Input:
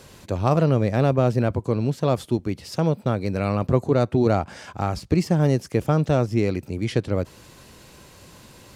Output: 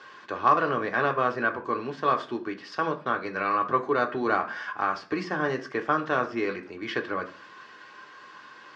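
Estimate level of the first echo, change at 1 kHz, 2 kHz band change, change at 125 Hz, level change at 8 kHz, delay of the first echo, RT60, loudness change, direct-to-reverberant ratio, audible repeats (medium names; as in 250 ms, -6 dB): no echo, +4.0 dB, +8.0 dB, -20.5 dB, under -10 dB, no echo, 0.45 s, -5.0 dB, 2.0 dB, no echo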